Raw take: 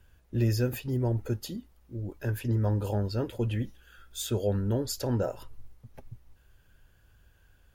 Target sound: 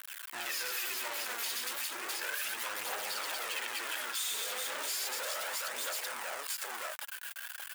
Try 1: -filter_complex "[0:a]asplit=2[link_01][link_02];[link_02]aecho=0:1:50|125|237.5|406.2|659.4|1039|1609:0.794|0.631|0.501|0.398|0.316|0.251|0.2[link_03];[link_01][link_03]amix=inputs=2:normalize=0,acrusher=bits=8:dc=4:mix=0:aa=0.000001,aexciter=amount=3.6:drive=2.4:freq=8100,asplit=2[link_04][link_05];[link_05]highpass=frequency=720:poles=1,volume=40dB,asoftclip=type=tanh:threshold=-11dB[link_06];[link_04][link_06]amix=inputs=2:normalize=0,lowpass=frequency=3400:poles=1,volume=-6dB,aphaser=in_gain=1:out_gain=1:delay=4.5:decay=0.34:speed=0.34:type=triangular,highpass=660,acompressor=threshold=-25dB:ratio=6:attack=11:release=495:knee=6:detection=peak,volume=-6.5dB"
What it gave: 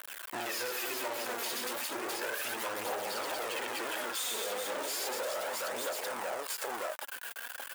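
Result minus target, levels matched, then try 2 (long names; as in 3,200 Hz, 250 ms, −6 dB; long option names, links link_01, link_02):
500 Hz band +9.0 dB
-filter_complex "[0:a]asplit=2[link_01][link_02];[link_02]aecho=0:1:50|125|237.5|406.2|659.4|1039|1609:0.794|0.631|0.501|0.398|0.316|0.251|0.2[link_03];[link_01][link_03]amix=inputs=2:normalize=0,acrusher=bits=8:dc=4:mix=0:aa=0.000001,aexciter=amount=3.6:drive=2.4:freq=8100,asplit=2[link_04][link_05];[link_05]highpass=frequency=720:poles=1,volume=40dB,asoftclip=type=tanh:threshold=-11dB[link_06];[link_04][link_06]amix=inputs=2:normalize=0,lowpass=frequency=3400:poles=1,volume=-6dB,aphaser=in_gain=1:out_gain=1:delay=4.5:decay=0.34:speed=0.34:type=triangular,highpass=1400,acompressor=threshold=-25dB:ratio=6:attack=11:release=495:knee=6:detection=peak,volume=-6.5dB"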